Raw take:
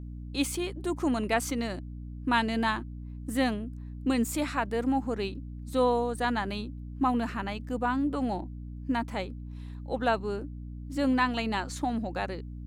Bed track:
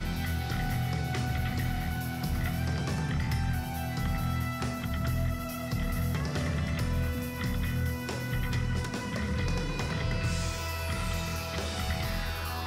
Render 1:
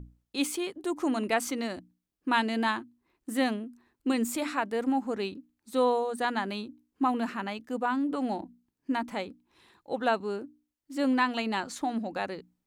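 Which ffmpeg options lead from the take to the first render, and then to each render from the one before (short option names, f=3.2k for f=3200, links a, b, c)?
-af "bandreject=f=60:t=h:w=6,bandreject=f=120:t=h:w=6,bandreject=f=180:t=h:w=6,bandreject=f=240:t=h:w=6,bandreject=f=300:t=h:w=6"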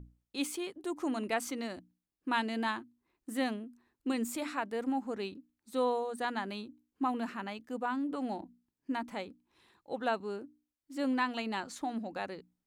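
-af "volume=-5.5dB"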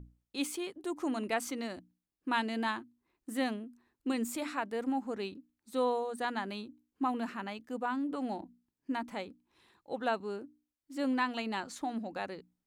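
-af anull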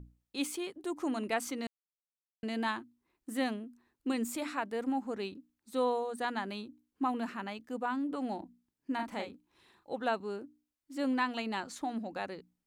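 -filter_complex "[0:a]asettb=1/sr,asplit=3[a][b][c];[a]atrim=end=8.954[d];[b]atrim=start=8.95:end=9.91,asetpts=PTS-STARTPTS,afade=t=in:d=0.004:c=qsin,afade=t=out:st=0.956:d=0.004:c=qsin,asplit=2[e][f];[f]adelay=40,volume=-4.5dB[g];[e][g]amix=inputs=2:normalize=0,atrim=end_sample=42336[h];[c]atrim=start=9.906[i];[d][h]acrossfade=d=0.004:c1=hsin:c2=qsin[j];[j][i]acrossfade=d=0.004:c1=qsin:c2=hsin,asplit=3[k][l][m];[k]atrim=end=1.67,asetpts=PTS-STARTPTS,afade=t=out:st=1.666:d=0.004:c=hsin[n];[l]atrim=start=1.67:end=2.43,asetpts=PTS-STARTPTS,volume=0[o];[m]atrim=start=2.43,asetpts=PTS-STARTPTS,afade=t=in:d=0.004:c=hsin[p];[n][o][p]concat=n=3:v=0:a=1"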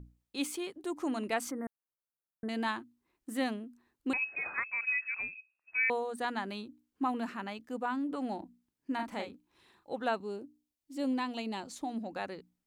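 -filter_complex "[0:a]asettb=1/sr,asplit=3[a][b][c];[a]atrim=end=1.514[d];[b]atrim=start=1.51:end=2.49,asetpts=PTS-STARTPTS,afade=t=in:d=0.004:c=qsin,afade=t=out:st=0.976:d=0.004:c=qsin,asuperstop=centerf=4300:order=12:qfactor=0.57[e];[c]atrim=start=2.486[f];[d][e]acrossfade=d=0.004:c1=hsin:c2=qsin[g];[g][f]acrossfade=d=0.004:c1=qsin:c2=hsin,asettb=1/sr,asplit=3[h][i][j];[h]atrim=end=4.134[k];[i]atrim=start=4.13:end=5.9,asetpts=PTS-STARTPTS,afade=t=in:d=0.004:c=qsin,afade=t=out:st=1.766:d=0.004:c=qsin,lowpass=f=2.4k:t=q:w=0.5098,lowpass=f=2.4k:t=q:w=0.6013,lowpass=f=2.4k:t=q:w=0.9,lowpass=f=2.4k:t=q:w=2.563,afreqshift=-2800[l];[j]atrim=start=5.896[m];[k][l]acrossfade=d=0.004:c1=hsin:c2=qsin[n];[n][m]acrossfade=d=0.004:c1=qsin:c2=hsin,asettb=1/sr,asplit=3[o][p][q];[o]atrim=end=10.214[r];[p]atrim=start=10.21:end=12.02,asetpts=PTS-STARTPTS,afade=t=in:d=0.004:c=qsin,afade=t=out:st=1.806:d=0.004:c=qsin,equalizer=f=1.5k:t=o:w=1.1:g=-9.5[s];[q]atrim=start=12.016[t];[r][s]acrossfade=d=0.004:c1=hsin:c2=qsin[u];[u][t]acrossfade=d=0.004:c1=qsin:c2=hsin"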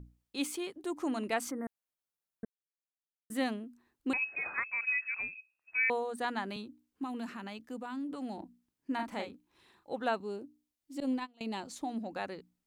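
-filter_complex "[0:a]asettb=1/sr,asplit=3[a][b][c];[a]atrim=end=6.564[d];[b]atrim=start=6.56:end=8.38,asetpts=PTS-STARTPTS,afade=t=in:d=0.004:c=qsin,afade=t=out:st=1.816:d=0.004:c=qsin,acrossover=split=230|3000[e][f][g];[f]acompressor=threshold=-43dB:ratio=2.5:attack=3.2:release=140:knee=2.83:detection=peak[h];[e][h][g]amix=inputs=3:normalize=0[i];[c]atrim=start=8.376[j];[d][i]acrossfade=d=0.004:c1=hsin:c2=qsin[k];[k][j]acrossfade=d=0.004:c1=qsin:c2=hsin,asettb=1/sr,asplit=3[l][m][n];[l]atrim=end=11.004[o];[m]atrim=start=11:end=11.41,asetpts=PTS-STARTPTS,afade=t=in:d=0.004:c=qsin,afade=t=out:st=0.406:d=0.004:c=qsin,agate=range=-25dB:threshold=-33dB:ratio=16:release=100:detection=peak[p];[n]atrim=start=11.406[q];[o][p]acrossfade=d=0.004:c1=hsin:c2=qsin[r];[r][q]acrossfade=d=0.004:c1=qsin:c2=hsin,asplit=3[s][t][u];[s]atrim=end=2.45,asetpts=PTS-STARTPTS,afade=t=out:st=2.446:d=0.004:c=hsin[v];[t]atrim=start=2.45:end=3.3,asetpts=PTS-STARTPTS,volume=0[w];[u]atrim=start=3.3,asetpts=PTS-STARTPTS,afade=t=in:d=0.004:c=hsin[x];[v][w][x]concat=n=3:v=0:a=1"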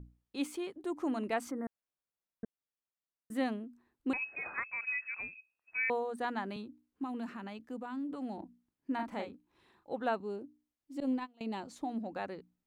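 -af "highshelf=f=2.6k:g=-9"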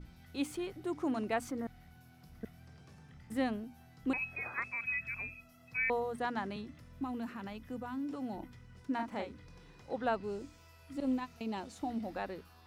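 -filter_complex "[1:a]volume=-25.5dB[a];[0:a][a]amix=inputs=2:normalize=0"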